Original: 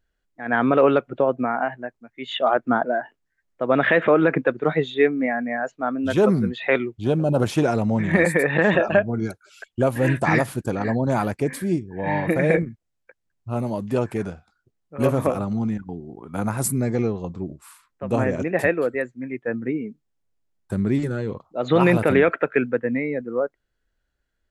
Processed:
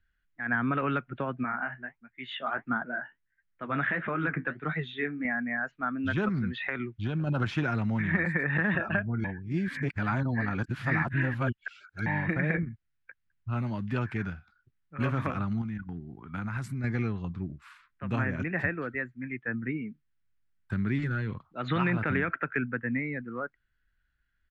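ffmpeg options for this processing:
-filter_complex "[0:a]asettb=1/sr,asplit=3[s0][s1][s2];[s0]atrim=end=1.434[s3];[s1]atrim=start=1.43:end=5.25,asetpts=PTS-STARTPTS,afade=t=in:d=0.004:c=qsin,afade=t=out:st=3.816:d=0.004:c=qsin,flanger=delay=4.7:depth=9.7:regen=-50:speed=1.5:shape=sinusoidal[s4];[s2]atrim=start=5.246[s5];[s3][s4]acrossfade=d=0.004:c1=hsin:c2=qsin[s6];[s6][s5]acrossfade=d=0.004:c1=qsin:c2=hsin,asettb=1/sr,asplit=3[s7][s8][s9];[s7]atrim=end=6.284[s10];[s8]atrim=start=6.28:end=7.27,asetpts=PTS-STARTPTS,afade=t=in:d=0.004:c=qsin,afade=t=out:st=0.986:d=0.004:c=qsin,acompressor=threshold=0.112:ratio=6:attack=3.2:release=140:knee=1:detection=peak[s11];[s9]atrim=start=7.266[s12];[s10][s11]acrossfade=d=0.004:c1=hsin:c2=qsin[s13];[s13][s12]acrossfade=d=0.004:c1=qsin:c2=hsin,asettb=1/sr,asplit=3[s14][s15][s16];[s14]atrim=end=15.614[s17];[s15]atrim=start=15.61:end=16.84,asetpts=PTS-STARTPTS,afade=t=in:d=0.004:c=qsin,afade=t=out:st=1.226:d=0.004:c=qsin,acompressor=threshold=0.0501:ratio=6:attack=3.2:release=140:knee=1:detection=peak[s18];[s16]atrim=start=16.836[s19];[s17][s18]acrossfade=d=0.004:c1=hsin:c2=qsin[s20];[s20][s19]acrossfade=d=0.004:c1=qsin:c2=hsin,asplit=3[s21][s22][s23];[s21]atrim=end=9.242[s24];[s22]atrim=start=9.238:end=12.062,asetpts=PTS-STARTPTS,areverse[s25];[s23]atrim=start=12.058[s26];[s24][s25]acrossfade=d=0.004:c1=hsin:c2=hsin[s27];[s27][s26]acrossfade=d=0.004:c1=hsin:c2=hsin,firequalizer=gain_entry='entry(110,0);entry(490,-17);entry(1500,4);entry(9500,-26)':delay=0.05:min_phase=1,acrossover=split=260|1400[s28][s29][s30];[s28]acompressor=threshold=0.0355:ratio=4[s31];[s29]acompressor=threshold=0.0355:ratio=4[s32];[s30]acompressor=threshold=0.0141:ratio=4[s33];[s31][s32][s33]amix=inputs=3:normalize=0"

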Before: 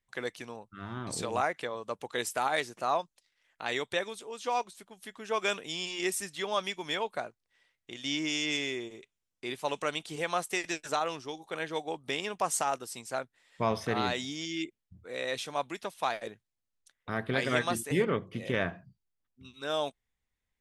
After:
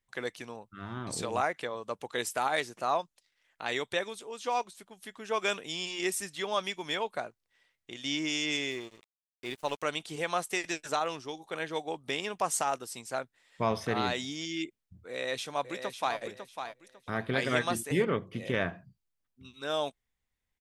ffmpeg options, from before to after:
-filter_complex "[0:a]asettb=1/sr,asplit=3[s0][s1][s2];[s0]atrim=end=8.714[s3];[s1]atrim=start=8.71:end=9.83,asetpts=PTS-STARTPTS,afade=t=in:d=0.004:c=qsin,afade=t=out:st=1.116:d=0.004:c=qsin,aeval=exprs='sgn(val(0))*max(abs(val(0))-0.00398,0)':c=same[s4];[s2]atrim=start=9.826[s5];[s3][s4]acrossfade=d=0.004:c1=hsin:c2=qsin[s6];[s6][s5]acrossfade=d=0.004:c1=qsin:c2=hsin,asplit=2[s7][s8];[s8]afade=t=in:st=15.09:d=0.01,afade=t=out:st=16.18:d=0.01,aecho=0:1:550|1100|1650:0.398107|0.0995268|0.0248817[s9];[s7][s9]amix=inputs=2:normalize=0"

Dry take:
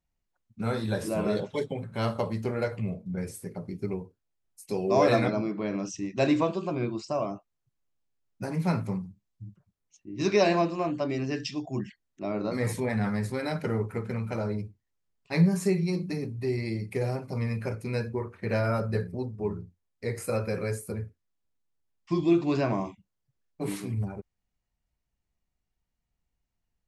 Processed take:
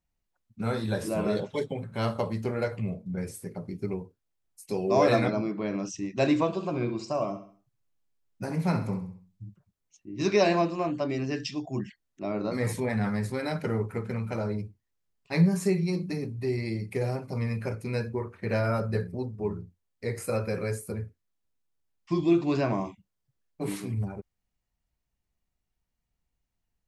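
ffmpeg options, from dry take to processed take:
-filter_complex "[0:a]asettb=1/sr,asplit=3[s0][s1][s2];[s0]atrim=end=6.464[s3];[s1]atrim=start=6.46:end=9.47,asetpts=PTS-STARTPTS,afade=t=in:d=0.004:c=qsin,afade=t=out:st=3.006:d=0.004:c=qsin,aecho=1:1:66|132|198|264:0.282|0.121|0.0521|0.0224,atrim=end_sample=132741[s4];[s2]atrim=start=9.466[s5];[s3][s4]acrossfade=d=0.004:c1=hsin:c2=qsin[s6];[s6][s5]acrossfade=d=0.004:c1=qsin:c2=hsin"

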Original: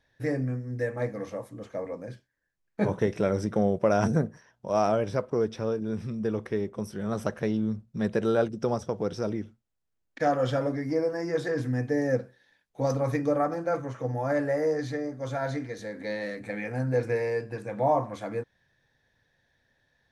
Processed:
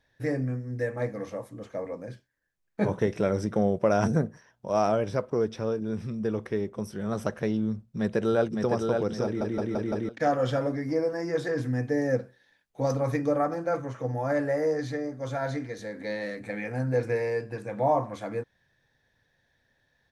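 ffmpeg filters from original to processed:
-filter_complex "[0:a]asplit=2[s0][s1];[s1]afade=t=in:st=7.76:d=0.01,afade=t=out:st=8.71:d=0.01,aecho=0:1:560|1120|1680|2240|2800:0.630957|0.252383|0.100953|0.0403813|0.0161525[s2];[s0][s2]amix=inputs=2:normalize=0,asplit=6[s3][s4][s5][s6][s7][s8];[s3]atrim=end=9.412[s9];[s4]atrim=start=9.238:end=9.412[s10];[s5]atrim=start=9.238:end=9.412[s11];[s6]atrim=start=9.238:end=9.412[s12];[s7]atrim=start=9.238:end=9.412[s13];[s8]atrim=start=10.088[s14];[s9][s10]acrossfade=d=0.004:c1=hsin:c2=hsin[s15];[s15][s11]acrossfade=d=0.004:c1=hsin:c2=hsin[s16];[s16][s12]acrossfade=d=0.004:c1=hsin:c2=hsin[s17];[s17][s13]acrossfade=d=0.004:c1=hsin:c2=hsin[s18];[s18][s14]acrossfade=d=0.004:c1=hsin:c2=hsin"

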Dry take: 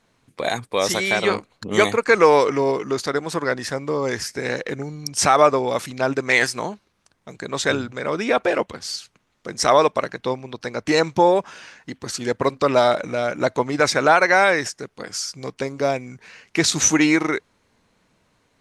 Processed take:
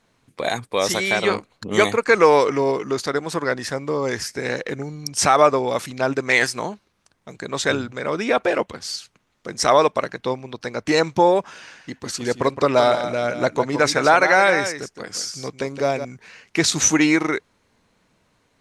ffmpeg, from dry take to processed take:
-filter_complex "[0:a]asettb=1/sr,asplit=3[s0][s1][s2];[s0]atrim=end=11.514[s3];[s1]atrim=start=11.51:end=16.05,asetpts=PTS-STARTPTS,afade=t=in:d=0.004:c=qsin,afade=t=out:st=4.536:d=0.004:c=qsin,aecho=1:1:166:0.335,atrim=end_sample=200214[s4];[s2]atrim=start=16.046[s5];[s3][s4]acrossfade=d=0.004:c1=hsin:c2=qsin[s6];[s6][s5]acrossfade=d=0.004:c1=qsin:c2=hsin"

